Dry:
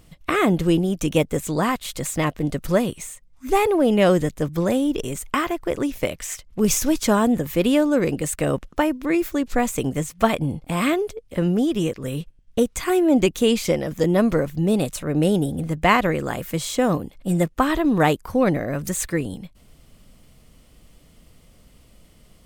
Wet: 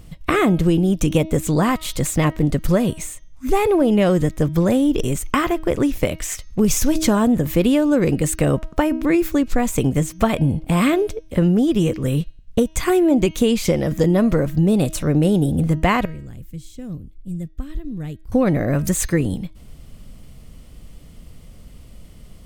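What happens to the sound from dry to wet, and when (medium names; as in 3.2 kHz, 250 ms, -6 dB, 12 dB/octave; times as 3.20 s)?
16.05–18.32 s: amplifier tone stack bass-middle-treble 10-0-1
whole clip: bass shelf 220 Hz +8.5 dB; de-hum 317.5 Hz, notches 20; compression, threshold -16 dBFS; trim +3.5 dB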